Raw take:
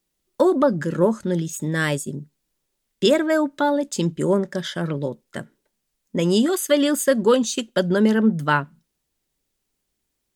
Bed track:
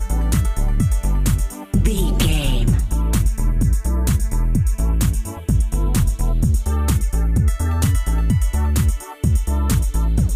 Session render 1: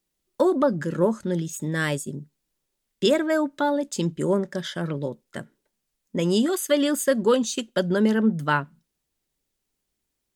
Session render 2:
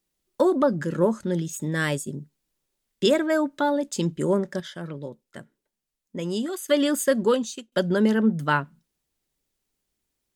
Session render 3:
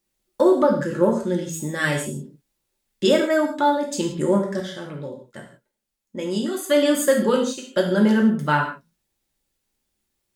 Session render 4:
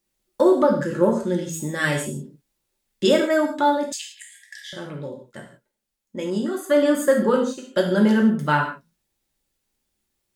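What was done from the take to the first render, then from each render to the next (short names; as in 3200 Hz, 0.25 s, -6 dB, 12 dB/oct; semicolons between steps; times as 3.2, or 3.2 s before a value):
gain -3 dB
4.6–6.68 gain -6.5 dB; 7.23–7.72 fade out, to -22 dB
non-linear reverb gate 0.2 s falling, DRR -1 dB
3.92–4.73 brick-wall FIR high-pass 1600 Hz; 6.3–7.76 resonant high shelf 2000 Hz -6 dB, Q 1.5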